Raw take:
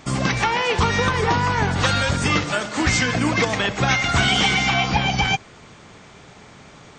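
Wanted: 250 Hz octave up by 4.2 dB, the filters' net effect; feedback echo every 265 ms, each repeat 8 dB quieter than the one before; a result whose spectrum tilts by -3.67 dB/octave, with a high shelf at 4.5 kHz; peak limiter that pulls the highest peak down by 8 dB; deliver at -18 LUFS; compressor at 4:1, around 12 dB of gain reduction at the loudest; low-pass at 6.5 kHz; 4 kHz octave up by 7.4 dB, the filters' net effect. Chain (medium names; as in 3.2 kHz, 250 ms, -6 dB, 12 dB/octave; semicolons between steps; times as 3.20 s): low-pass 6.5 kHz; peaking EQ 250 Hz +5.5 dB; peaking EQ 4 kHz +8.5 dB; treble shelf 4.5 kHz +4 dB; compression 4:1, threshold -26 dBFS; peak limiter -20 dBFS; feedback delay 265 ms, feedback 40%, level -8 dB; trim +10 dB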